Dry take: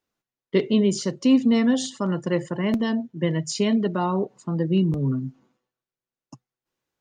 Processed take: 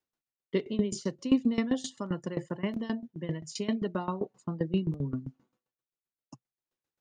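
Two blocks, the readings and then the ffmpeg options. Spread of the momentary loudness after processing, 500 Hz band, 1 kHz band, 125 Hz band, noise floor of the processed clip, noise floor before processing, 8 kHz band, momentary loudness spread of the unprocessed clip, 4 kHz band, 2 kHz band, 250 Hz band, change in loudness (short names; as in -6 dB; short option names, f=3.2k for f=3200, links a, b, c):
9 LU, -9.0 dB, -9.5 dB, -9.0 dB, under -85 dBFS, under -85 dBFS, -9.5 dB, 7 LU, -10.0 dB, -9.5 dB, -9.0 dB, -9.0 dB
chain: -af "aeval=exprs='val(0)*pow(10,-18*if(lt(mod(7.6*n/s,1),2*abs(7.6)/1000),1-mod(7.6*n/s,1)/(2*abs(7.6)/1000),(mod(7.6*n/s,1)-2*abs(7.6)/1000)/(1-2*abs(7.6)/1000))/20)':c=same,volume=-3dB"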